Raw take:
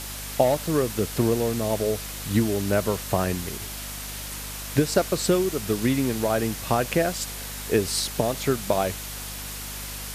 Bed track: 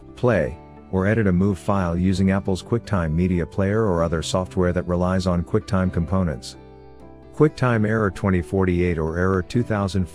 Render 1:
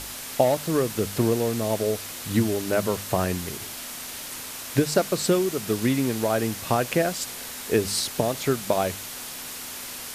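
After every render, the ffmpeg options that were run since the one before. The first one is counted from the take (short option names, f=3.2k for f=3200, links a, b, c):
-af "bandreject=f=50:t=h:w=4,bandreject=f=100:t=h:w=4,bandreject=f=150:t=h:w=4,bandreject=f=200:t=h:w=4"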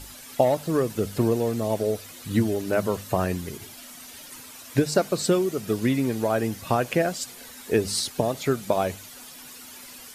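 -af "afftdn=nr=11:nf=-37"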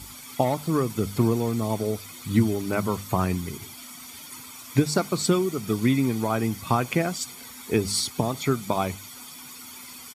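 -af "highpass=65,aecho=1:1:0.9:0.54"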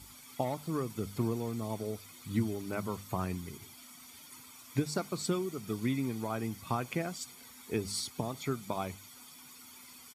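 -af "volume=-10.5dB"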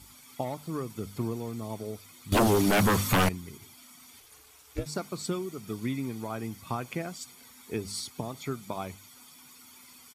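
-filter_complex "[0:a]asettb=1/sr,asplit=3[a][b][c];[a]atrim=end=2.324[d];[b]atrim=start=2.32:end=3.29,asetpts=PTS-STARTPTS,afade=t=in:d=0.004:c=qsin,afade=t=out:st=0.966:d=0.004:c=qsin,aeval=exprs='0.126*sin(PI/2*5.62*val(0)/0.126)':c=same[e];[c]atrim=start=3.286[f];[d][e]acrossfade=d=0.004:c1=hsin:c2=qsin[g];[g][f]acrossfade=d=0.004:c1=qsin:c2=hsin,asettb=1/sr,asplit=3[h][i][j];[h]atrim=end=4.204[k];[i]atrim=start=4.2:end=4.86,asetpts=PTS-STARTPTS,afade=t=in:d=0.004:c=qsin,afade=t=out:st=0.656:d=0.004:c=qsin,aeval=exprs='val(0)*sin(2*PI*180*n/s)':c=same[l];[j]atrim=start=4.856[m];[k][l]acrossfade=d=0.004:c1=hsin:c2=qsin[n];[n][m]acrossfade=d=0.004:c1=qsin:c2=hsin"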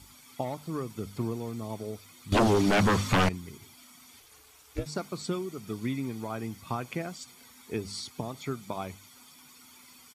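-filter_complex "[0:a]acrossover=split=7500[a][b];[b]acompressor=threshold=-55dB:ratio=4:attack=1:release=60[c];[a][c]amix=inputs=2:normalize=0"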